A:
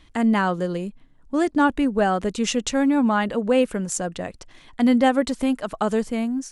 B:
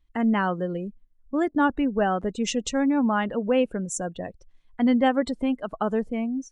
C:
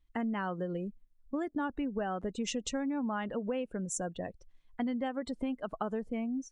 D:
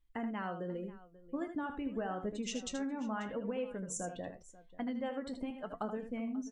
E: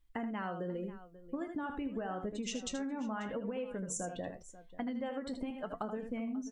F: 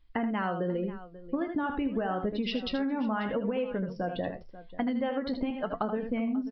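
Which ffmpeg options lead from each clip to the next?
-af "afftdn=nr=23:nf=-34,volume=0.708"
-af "acompressor=threshold=0.0501:ratio=10,volume=0.596"
-af "flanger=delay=8.7:depth=7.5:regen=60:speed=0.85:shape=triangular,aecho=1:1:78|538:0.376|0.112"
-af "acompressor=threshold=0.0126:ratio=6,volume=1.5"
-af "aresample=11025,aresample=44100,volume=2.51"

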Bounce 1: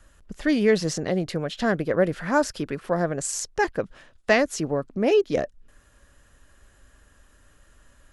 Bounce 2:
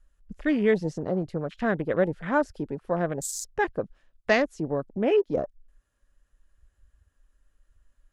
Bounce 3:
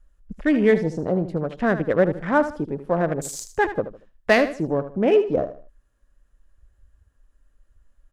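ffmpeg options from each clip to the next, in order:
-af "afwtdn=0.02,volume=0.75"
-filter_complex "[0:a]asplit=2[s0][s1];[s1]adynamicsmooth=sensitivity=5:basefreq=1900,volume=0.75[s2];[s0][s2]amix=inputs=2:normalize=0,aecho=1:1:77|154|231:0.251|0.0754|0.0226"

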